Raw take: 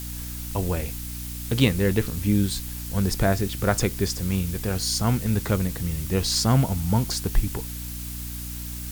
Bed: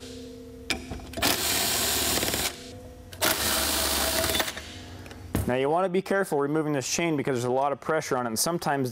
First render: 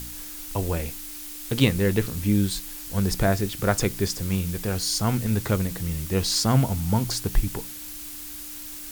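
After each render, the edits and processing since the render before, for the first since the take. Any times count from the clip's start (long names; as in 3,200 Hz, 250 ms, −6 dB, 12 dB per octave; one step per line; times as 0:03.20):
hum removal 60 Hz, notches 4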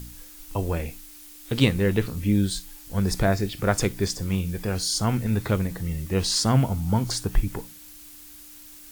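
noise reduction from a noise print 8 dB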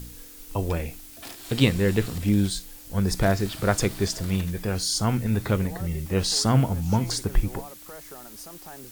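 mix in bed −18 dB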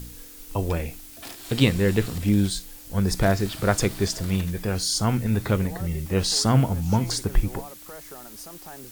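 level +1 dB
brickwall limiter −3 dBFS, peak gain reduction 1 dB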